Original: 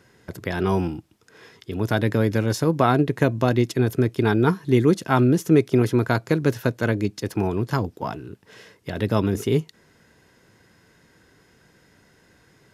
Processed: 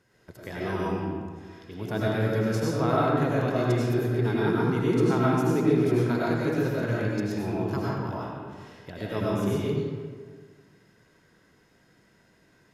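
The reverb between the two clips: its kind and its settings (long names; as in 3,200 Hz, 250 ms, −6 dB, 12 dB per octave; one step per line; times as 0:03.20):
comb and all-pass reverb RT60 1.7 s, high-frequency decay 0.6×, pre-delay 60 ms, DRR −6.5 dB
level −11.5 dB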